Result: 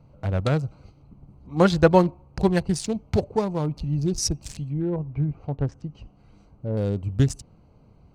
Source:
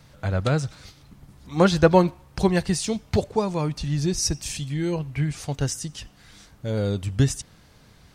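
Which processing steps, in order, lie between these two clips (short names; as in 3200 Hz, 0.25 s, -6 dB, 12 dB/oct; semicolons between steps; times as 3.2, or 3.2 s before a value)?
Wiener smoothing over 25 samples; 4.68–6.77 treble ducked by the level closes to 1600 Hz, closed at -25.5 dBFS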